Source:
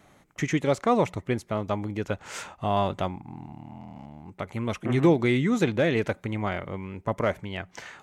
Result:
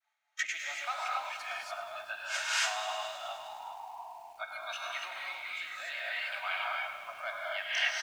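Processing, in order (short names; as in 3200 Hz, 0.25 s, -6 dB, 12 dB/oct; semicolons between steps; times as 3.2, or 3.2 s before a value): repeated pitch sweeps +1.5 st, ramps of 0.32 s; in parallel at -5.5 dB: hard clip -25 dBFS, distortion -7 dB; on the sum: expander -49 dBFS; rotary speaker horn 0.75 Hz; spectral noise reduction 24 dB; on a send: echo 0.405 s -20.5 dB; on the sum: non-linear reverb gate 0.31 s rising, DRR -4.5 dB; compressor 6:1, threshold -32 dBFS, peak gain reduction 20.5 dB; elliptic high-pass 700 Hz, stop band 40 dB; band shelf 2900 Hz +8.5 dB 2.5 oct; comb 3.2 ms, depth 31%; lo-fi delay 0.104 s, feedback 80%, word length 9-bit, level -12.5 dB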